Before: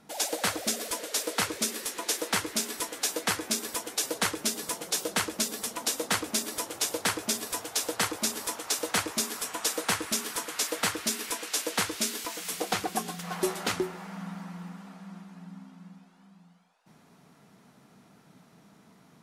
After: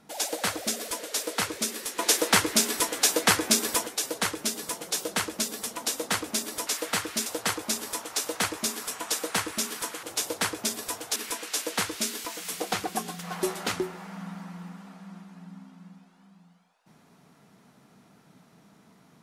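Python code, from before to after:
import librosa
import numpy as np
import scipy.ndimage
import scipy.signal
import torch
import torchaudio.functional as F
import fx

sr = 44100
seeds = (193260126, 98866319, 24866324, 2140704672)

y = fx.edit(x, sr, fx.clip_gain(start_s=1.99, length_s=1.88, db=7.0),
    fx.swap(start_s=6.67, length_s=1.13, other_s=10.57, other_length_s=0.59), tone=tone)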